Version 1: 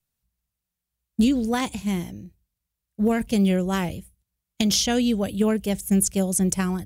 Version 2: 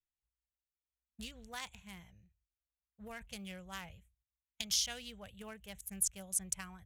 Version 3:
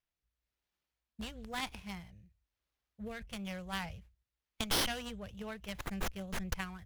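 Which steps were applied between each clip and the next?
adaptive Wiener filter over 9 samples; guitar amp tone stack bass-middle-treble 10-0-10; level −8.5 dB
soft clipping −29 dBFS, distortion −12 dB; rotating-speaker cabinet horn 1 Hz; windowed peak hold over 5 samples; level +8.5 dB

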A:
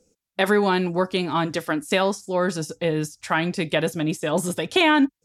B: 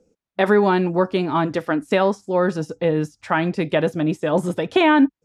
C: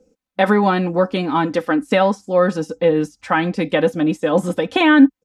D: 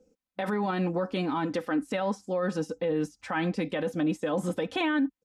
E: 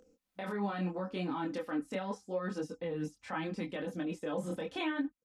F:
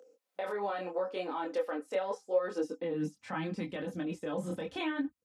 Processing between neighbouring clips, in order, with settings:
low-pass filter 1,200 Hz 6 dB per octave; low-shelf EQ 130 Hz −5.5 dB; level +5 dB
comb filter 3.9 ms, depth 62%; level +1.5 dB
brickwall limiter −13 dBFS, peak gain reduction 11.5 dB; level −7 dB
upward compression, threshold −50 dBFS; multi-voice chorus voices 2, 0.77 Hz, delay 24 ms, depth 2.7 ms; level −4.5 dB
high-pass filter sweep 500 Hz → 72 Hz, 0:02.43–0:03.69

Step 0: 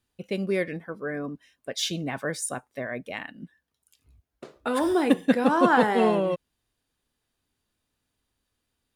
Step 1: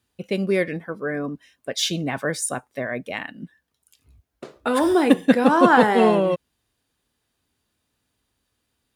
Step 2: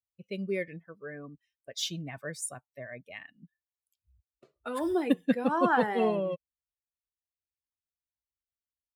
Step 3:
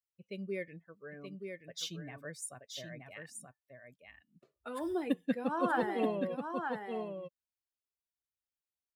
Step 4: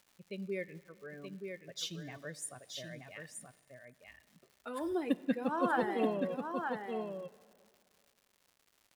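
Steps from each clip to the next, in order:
high-pass filter 45 Hz; level +5 dB
spectral dynamics exaggerated over time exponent 1.5; level −8.5 dB
single-tap delay 927 ms −5.5 dB; level −6.5 dB
surface crackle 250 per second −53 dBFS; dense smooth reverb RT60 2.3 s, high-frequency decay 0.85×, DRR 18 dB

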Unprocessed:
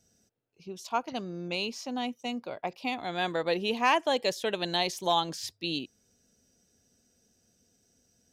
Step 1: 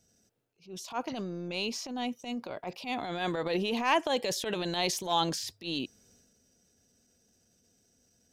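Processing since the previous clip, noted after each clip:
transient designer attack −11 dB, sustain +6 dB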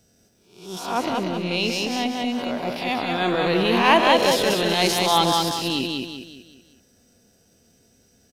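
peak hold with a rise ahead of every peak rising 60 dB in 0.57 s
parametric band 6,500 Hz −6.5 dB 0.66 octaves
on a send: repeating echo 189 ms, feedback 42%, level −3 dB
on the sum: level +8 dB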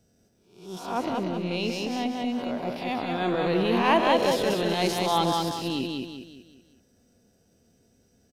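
tilt shelving filter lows +3.5 dB, about 1,200 Hz
level −6 dB

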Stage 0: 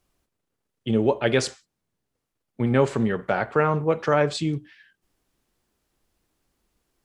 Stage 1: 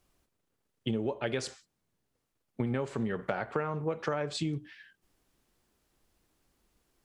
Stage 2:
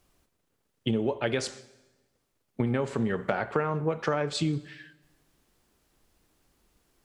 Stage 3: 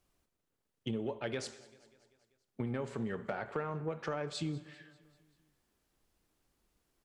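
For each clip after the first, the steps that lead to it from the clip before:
downward compressor 12 to 1, threshold −28 dBFS, peak gain reduction 15 dB
dense smooth reverb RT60 1.2 s, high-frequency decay 0.95×, DRR 16.5 dB; level +4.5 dB
repeating echo 195 ms, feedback 59%, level −21.5 dB; soft clipping −13 dBFS, distortion −25 dB; level −9 dB

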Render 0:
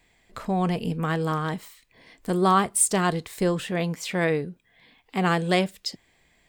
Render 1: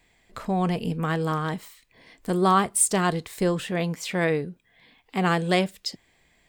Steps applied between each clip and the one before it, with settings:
no processing that can be heard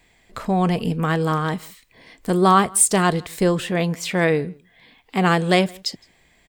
slap from a distant wall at 28 metres, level −26 dB
level +5 dB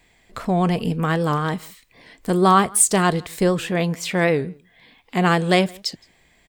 wow of a warped record 78 rpm, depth 100 cents

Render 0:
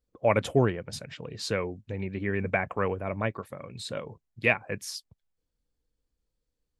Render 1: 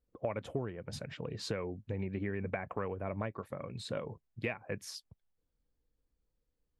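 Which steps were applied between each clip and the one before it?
high-shelf EQ 2,700 Hz −9.5 dB
downward compressor 12 to 1, threshold −32 dBFS, peak gain reduction 16 dB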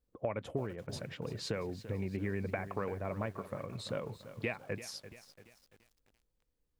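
feedback echo at a low word length 340 ms, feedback 55%, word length 9 bits, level −13 dB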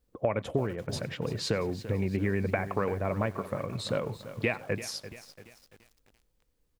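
single-tap delay 95 ms −23.5 dB
level +7.5 dB

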